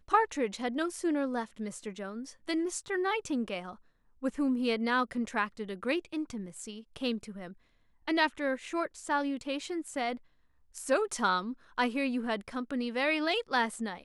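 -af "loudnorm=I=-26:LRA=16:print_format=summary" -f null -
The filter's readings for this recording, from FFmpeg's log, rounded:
Input Integrated:    -32.2 LUFS
Input True Peak:     -12.6 dBTP
Input LRA:             3.6 LU
Input Threshold:     -42.5 LUFS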